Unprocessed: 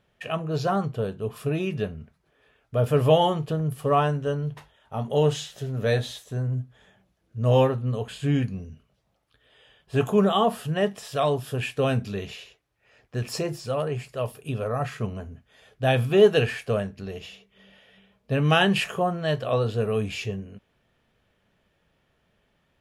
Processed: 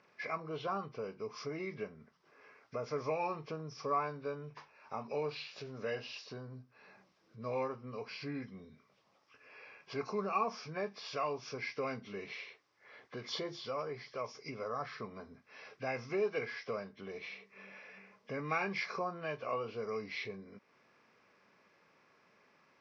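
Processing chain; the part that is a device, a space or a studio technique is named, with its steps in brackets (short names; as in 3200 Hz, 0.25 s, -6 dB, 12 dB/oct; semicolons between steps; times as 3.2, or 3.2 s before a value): hearing aid with frequency lowering (nonlinear frequency compression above 1500 Hz 1.5:1; compressor 2:1, threshold -49 dBFS, peak gain reduction 20 dB; speaker cabinet 260–6800 Hz, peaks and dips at 670 Hz -4 dB, 1100 Hz +8 dB, 2100 Hz +3 dB, 5000 Hz +10 dB); gain +2.5 dB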